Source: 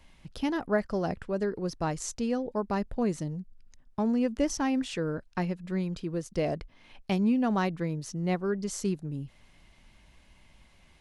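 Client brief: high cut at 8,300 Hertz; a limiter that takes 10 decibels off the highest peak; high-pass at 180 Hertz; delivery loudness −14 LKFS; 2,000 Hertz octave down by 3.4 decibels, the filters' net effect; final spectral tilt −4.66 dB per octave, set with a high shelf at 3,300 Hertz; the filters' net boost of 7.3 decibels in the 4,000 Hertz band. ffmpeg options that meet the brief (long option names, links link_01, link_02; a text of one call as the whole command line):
ffmpeg -i in.wav -af "highpass=180,lowpass=8300,equalizer=frequency=2000:width_type=o:gain=-8.5,highshelf=frequency=3300:gain=5.5,equalizer=frequency=4000:width_type=o:gain=8.5,volume=21dB,alimiter=limit=-4.5dB:level=0:latency=1" out.wav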